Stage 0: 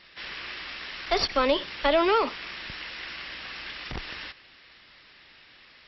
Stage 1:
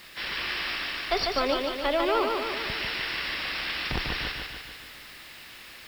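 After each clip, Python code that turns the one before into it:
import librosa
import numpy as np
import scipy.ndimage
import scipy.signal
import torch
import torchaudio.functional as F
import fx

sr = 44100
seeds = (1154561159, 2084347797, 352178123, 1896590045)

y = fx.rider(x, sr, range_db=5, speed_s=0.5)
y = fx.dmg_noise_colour(y, sr, seeds[0], colour='white', level_db=-56.0)
y = fx.echo_feedback(y, sr, ms=147, feedback_pct=58, wet_db=-4)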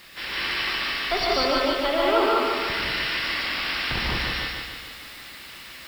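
y = fx.rev_gated(x, sr, seeds[1], gate_ms=220, shape='rising', drr_db=-2.5)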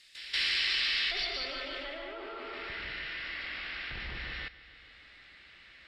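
y = fx.level_steps(x, sr, step_db=15)
y = fx.filter_sweep_lowpass(y, sr, from_hz=9500.0, to_hz=1500.0, start_s=0.3, end_s=2.14, q=0.76)
y = fx.graphic_eq(y, sr, hz=(125, 250, 500, 1000, 2000, 4000, 8000), db=(-5, -7, -3, -11, 5, 8, 10))
y = y * 10.0 ** (-6.0 / 20.0)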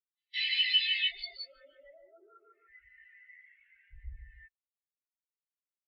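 y = fx.spectral_expand(x, sr, expansion=4.0)
y = y * 10.0 ** (2.0 / 20.0)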